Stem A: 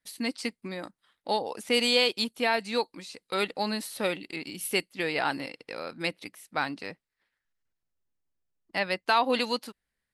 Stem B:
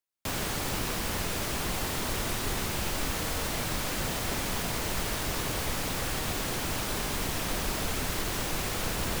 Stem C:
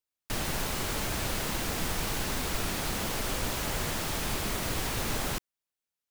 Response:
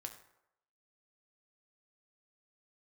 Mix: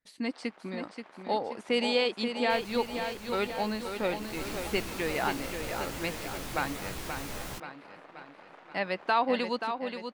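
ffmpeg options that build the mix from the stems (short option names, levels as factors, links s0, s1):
-filter_complex "[0:a]lowpass=f=9600:w=0.5412,lowpass=f=9600:w=1.3066,highshelf=f=3400:g=-12,volume=0.891,asplit=3[s0][s1][s2];[s1]volume=0.422[s3];[1:a]lowpass=1100,aeval=exprs='0.106*(cos(1*acos(clip(val(0)/0.106,-1,1)))-cos(1*PI/2))+0.0211*(cos(3*acos(clip(val(0)/0.106,-1,1)))-cos(3*PI/2))+0.0133*(cos(7*acos(clip(val(0)/0.106,-1,1)))-cos(7*PI/2))':c=same,highpass=580,volume=0.335,asplit=2[s4][s5];[s5]volume=0.501[s6];[2:a]flanger=delay=15:depth=2.5:speed=0.4,adelay=2200,volume=0.562,afade=t=in:st=4.16:d=0.3:silence=0.375837[s7];[s2]apad=whole_len=405721[s8];[s4][s8]sidechaincompress=threshold=0.02:ratio=8:attack=48:release=125[s9];[s3][s6]amix=inputs=2:normalize=0,aecho=0:1:530|1060|1590|2120|2650|3180|3710|4240:1|0.56|0.314|0.176|0.0983|0.0551|0.0308|0.0173[s10];[s0][s9][s7][s10]amix=inputs=4:normalize=0"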